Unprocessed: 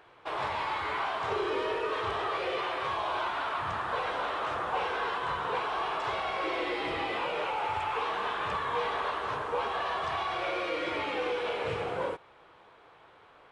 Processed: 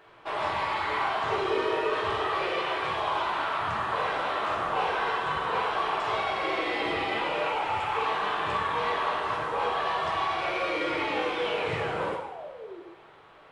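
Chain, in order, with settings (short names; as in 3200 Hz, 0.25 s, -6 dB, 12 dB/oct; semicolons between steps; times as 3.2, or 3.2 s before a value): painted sound fall, 11.35–12.8, 330–3700 Hz -45 dBFS; two-slope reverb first 0.77 s, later 2.3 s, DRR -1.5 dB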